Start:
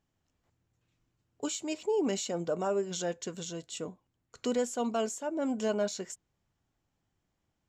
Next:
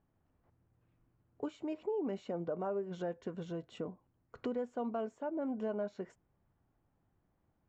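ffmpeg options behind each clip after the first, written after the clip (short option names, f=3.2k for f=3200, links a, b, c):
-af "lowpass=1.4k,acompressor=threshold=-43dB:ratio=2.5,volume=4dB"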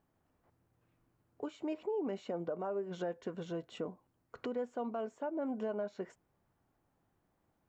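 -af "lowshelf=f=180:g=-9,alimiter=level_in=8dB:limit=-24dB:level=0:latency=1:release=230,volume=-8dB,volume=3.5dB"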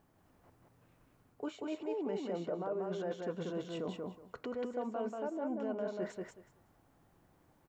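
-af "areverse,acompressor=threshold=-44dB:ratio=6,areverse,aecho=1:1:186|372|558:0.708|0.127|0.0229,volume=7.5dB"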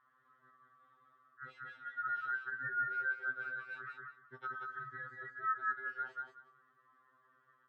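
-af "afftfilt=real='real(if(lt(b,960),b+48*(1-2*mod(floor(b/48),2)),b),0)':imag='imag(if(lt(b,960),b+48*(1-2*mod(floor(b/48),2)),b),0)':win_size=2048:overlap=0.75,highpass=130,lowpass=2.1k,afftfilt=real='re*2.45*eq(mod(b,6),0)':imag='im*2.45*eq(mod(b,6),0)':win_size=2048:overlap=0.75,volume=1dB"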